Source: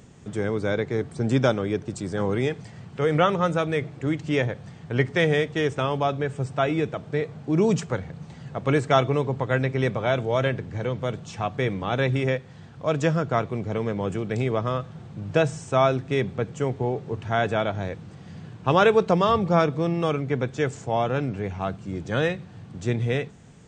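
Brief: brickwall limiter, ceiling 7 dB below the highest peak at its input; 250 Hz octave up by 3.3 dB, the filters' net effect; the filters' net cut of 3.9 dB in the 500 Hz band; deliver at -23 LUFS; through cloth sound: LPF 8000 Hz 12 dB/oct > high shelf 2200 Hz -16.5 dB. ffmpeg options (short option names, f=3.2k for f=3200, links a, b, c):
-af "equalizer=f=250:t=o:g=6.5,equalizer=f=500:t=o:g=-5.5,alimiter=limit=-12.5dB:level=0:latency=1,lowpass=8k,highshelf=f=2.2k:g=-16.5,volume=3.5dB"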